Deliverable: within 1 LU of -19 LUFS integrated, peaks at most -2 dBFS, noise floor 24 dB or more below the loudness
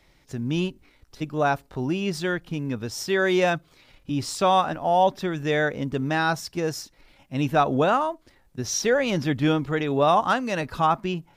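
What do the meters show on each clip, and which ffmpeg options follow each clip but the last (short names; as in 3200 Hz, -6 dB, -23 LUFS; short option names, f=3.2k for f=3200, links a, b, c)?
loudness -24.5 LUFS; peak -8.5 dBFS; loudness target -19.0 LUFS
-> -af "volume=5.5dB"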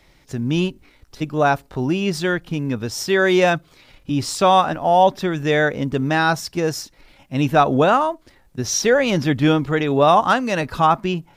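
loudness -19.0 LUFS; peak -3.0 dBFS; noise floor -55 dBFS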